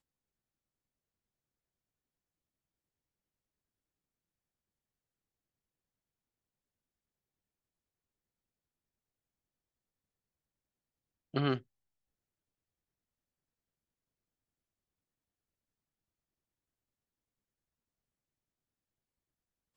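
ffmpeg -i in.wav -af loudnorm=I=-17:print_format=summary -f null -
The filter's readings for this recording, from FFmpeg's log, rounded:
Input Integrated:    -35.0 LUFS
Input True Peak:     -16.2 dBTP
Input LRA:             0.0 LU
Input Threshold:     -45.0 LUFS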